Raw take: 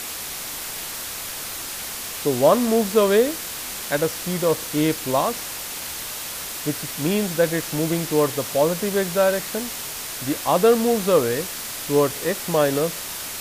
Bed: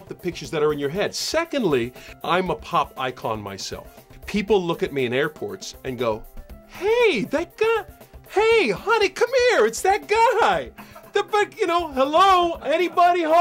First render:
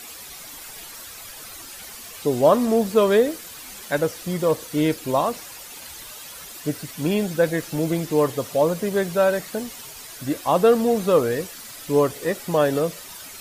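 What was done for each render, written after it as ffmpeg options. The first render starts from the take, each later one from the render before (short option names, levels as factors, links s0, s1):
-af "afftdn=nr=11:nf=-32"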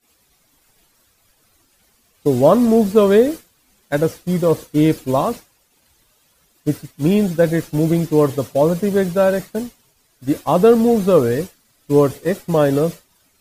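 -af "agate=range=0.0224:threshold=0.0562:ratio=3:detection=peak,lowshelf=f=430:g=10"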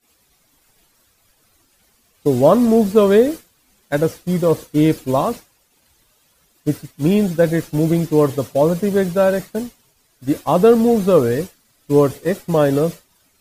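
-af anull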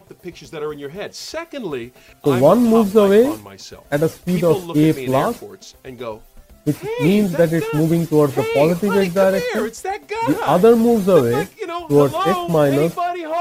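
-filter_complex "[1:a]volume=0.531[s0];[0:a][s0]amix=inputs=2:normalize=0"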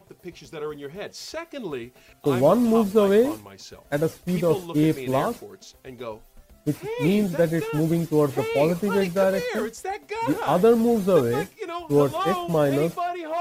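-af "volume=0.501"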